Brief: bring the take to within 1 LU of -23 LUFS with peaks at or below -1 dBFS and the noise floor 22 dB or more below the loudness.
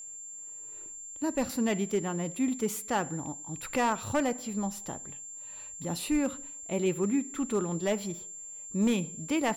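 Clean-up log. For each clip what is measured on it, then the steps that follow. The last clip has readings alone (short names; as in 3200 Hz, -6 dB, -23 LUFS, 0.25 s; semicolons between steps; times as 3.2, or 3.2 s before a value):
clipped 0.4%; flat tops at -20.0 dBFS; steady tone 7300 Hz; tone level -41 dBFS; loudness -32.0 LUFS; peak -20.0 dBFS; loudness target -23.0 LUFS
-> clip repair -20 dBFS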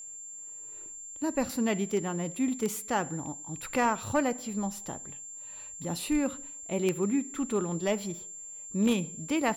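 clipped 0.0%; steady tone 7300 Hz; tone level -41 dBFS
-> notch 7300 Hz, Q 30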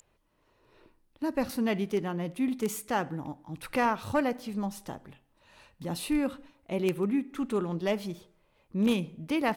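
steady tone none; loudness -31.0 LUFS; peak -11.0 dBFS; loudness target -23.0 LUFS
-> gain +8 dB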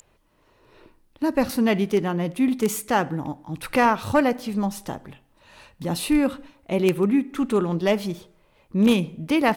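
loudness -23.0 LUFS; peak -3.0 dBFS; noise floor -62 dBFS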